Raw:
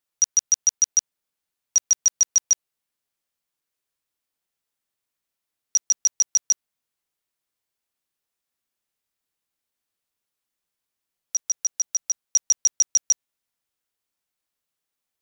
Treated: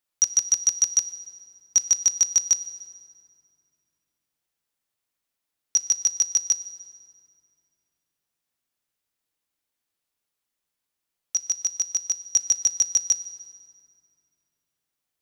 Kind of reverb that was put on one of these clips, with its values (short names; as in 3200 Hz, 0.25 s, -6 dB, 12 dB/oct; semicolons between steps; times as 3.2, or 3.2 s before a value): FDN reverb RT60 2.5 s, low-frequency decay 1.55×, high-frequency decay 0.65×, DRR 12 dB